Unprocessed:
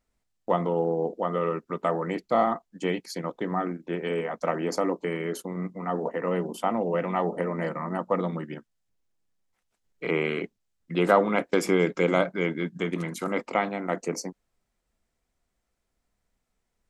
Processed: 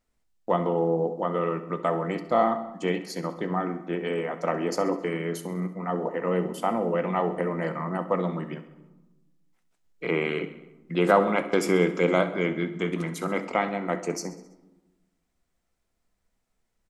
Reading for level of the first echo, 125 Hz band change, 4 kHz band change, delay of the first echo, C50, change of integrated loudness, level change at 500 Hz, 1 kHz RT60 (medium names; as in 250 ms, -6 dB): -16.0 dB, +1.5 dB, +0.5 dB, 66 ms, 11.5 dB, +0.5 dB, +0.5 dB, 1.1 s